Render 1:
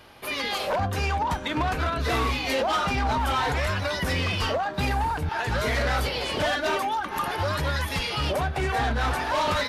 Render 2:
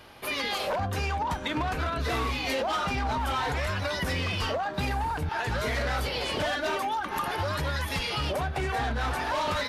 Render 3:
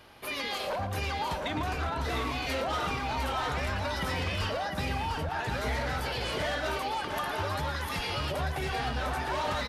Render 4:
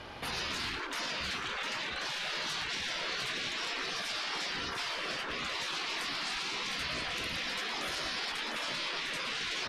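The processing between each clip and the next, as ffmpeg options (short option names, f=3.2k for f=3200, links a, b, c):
-af "acompressor=threshold=-26dB:ratio=6"
-af "aecho=1:1:114|704:0.299|0.562,volume=-4dB"
-af "afftfilt=real='re*lt(hypot(re,im),0.0282)':imag='im*lt(hypot(re,im),0.0282)':win_size=1024:overlap=0.75,lowpass=6.1k,alimiter=level_in=11.5dB:limit=-24dB:level=0:latency=1:release=10,volume=-11.5dB,volume=8.5dB"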